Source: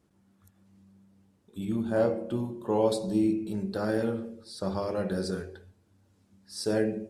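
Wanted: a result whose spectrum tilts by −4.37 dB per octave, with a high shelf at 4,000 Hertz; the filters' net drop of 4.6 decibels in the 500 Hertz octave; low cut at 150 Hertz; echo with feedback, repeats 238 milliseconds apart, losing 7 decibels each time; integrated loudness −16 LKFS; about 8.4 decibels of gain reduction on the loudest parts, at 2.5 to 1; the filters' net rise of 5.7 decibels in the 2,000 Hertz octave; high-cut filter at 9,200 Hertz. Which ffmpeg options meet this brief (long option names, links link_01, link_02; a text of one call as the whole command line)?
ffmpeg -i in.wav -af "highpass=150,lowpass=9200,equalizer=frequency=500:width_type=o:gain=-6,equalizer=frequency=2000:width_type=o:gain=7,highshelf=frequency=4000:gain=8,acompressor=threshold=-36dB:ratio=2.5,aecho=1:1:238|476|714|952|1190:0.447|0.201|0.0905|0.0407|0.0183,volume=21.5dB" out.wav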